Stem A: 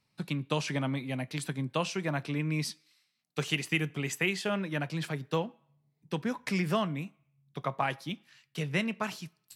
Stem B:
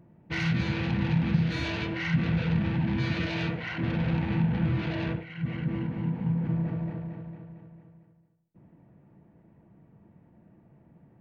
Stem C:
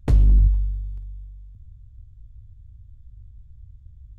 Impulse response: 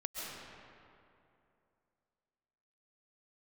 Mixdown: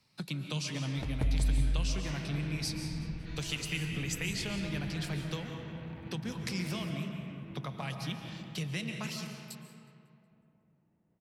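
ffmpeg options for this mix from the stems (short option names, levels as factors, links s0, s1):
-filter_complex "[0:a]acrossover=split=170|3000[s0][s1][s2];[s1]acompressor=threshold=0.00631:ratio=4[s3];[s0][s3][s2]amix=inputs=3:normalize=0,volume=1.12,asplit=3[s4][s5][s6];[s5]volume=0.596[s7];[s6]volume=0.126[s8];[1:a]adelay=1750,volume=0.112,asplit=2[s9][s10];[s10]volume=0.398[s11];[2:a]acompressor=threshold=0.0794:ratio=6,adelay=950,volume=0.794,asplit=2[s12][s13];[s13]volume=0.501[s14];[s4][s12]amix=inputs=2:normalize=0,equalizer=f=4800:w=1.5:g=6,acompressor=threshold=0.00631:ratio=2,volume=1[s15];[3:a]atrim=start_sample=2205[s16];[s7][s11]amix=inputs=2:normalize=0[s17];[s17][s16]afir=irnorm=-1:irlink=0[s18];[s8][s14]amix=inputs=2:normalize=0,aecho=0:1:183|366|549|732|915|1098:1|0.42|0.176|0.0741|0.0311|0.0131[s19];[s9][s15][s18][s19]amix=inputs=4:normalize=0"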